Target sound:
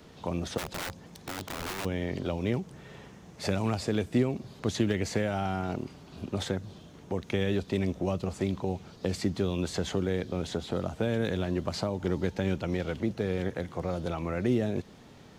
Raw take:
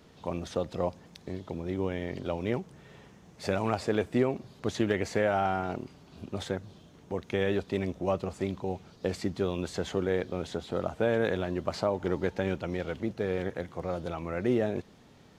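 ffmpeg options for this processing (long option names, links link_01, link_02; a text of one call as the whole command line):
ffmpeg -i in.wav -filter_complex "[0:a]acrossover=split=270|3000[link_01][link_02][link_03];[link_02]acompressor=threshold=-36dB:ratio=6[link_04];[link_01][link_04][link_03]amix=inputs=3:normalize=0,asplit=3[link_05][link_06][link_07];[link_05]afade=type=out:start_time=0.57:duration=0.02[link_08];[link_06]aeval=exprs='(mod(50.1*val(0)+1,2)-1)/50.1':channel_layout=same,afade=type=in:start_time=0.57:duration=0.02,afade=type=out:start_time=1.84:duration=0.02[link_09];[link_07]afade=type=in:start_time=1.84:duration=0.02[link_10];[link_08][link_09][link_10]amix=inputs=3:normalize=0,volume=4.5dB" out.wav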